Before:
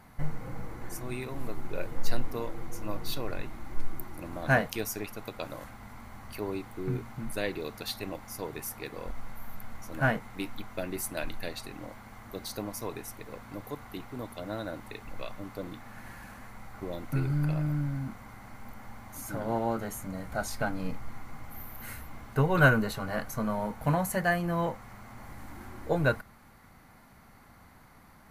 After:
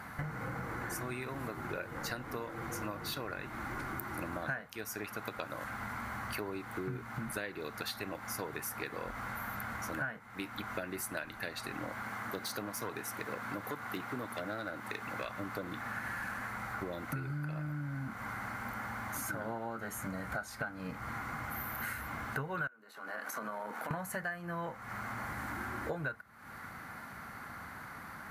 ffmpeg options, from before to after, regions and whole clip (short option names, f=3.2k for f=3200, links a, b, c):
-filter_complex "[0:a]asettb=1/sr,asplit=3[a][b][c];[a]atrim=end=12.024[d];[b]atrim=start=12.02:end=15.25,asetpts=PTS-STARTPTS,afade=t=in:d=0.004:c=qsin,afade=t=out:st=3.226:d=0.004:c=qsin,highpass=110,aeval=exprs='clip(val(0),-1,0.02)':c=same[e];[c]atrim=start=15.246[f];[d][e]acrossfade=d=0.004:c1=hsin:c2=qsin[g];[g][f]acrossfade=d=0.004:c1=qsin:c2=hsin,asettb=1/sr,asplit=3[h][i][j];[h]atrim=end=22.674[k];[i]atrim=start=22.67:end=23.91,asetpts=PTS-STARTPTS,afade=t=in:d=0.004:c=qsin,afade=t=out:st=1.236:d=0.004:c=qsin,highpass=f=260:w=0.5412,highpass=f=260:w=1.3066,tremolo=f=79:d=0.4,acompressor=threshold=-43dB:ratio=6:attack=3.2:release=140:knee=1:detection=peak[l];[j]atrim=start=23.906[m];[k][l]acrossfade=d=0.004:c1=hsin:c2=qsin[n];[n][m]acrossfade=d=0.004:c1=qsin:c2=hsin,highpass=74,equalizer=f=1.5k:t=o:w=0.88:g=11,acompressor=threshold=-41dB:ratio=12,volume=5.5dB"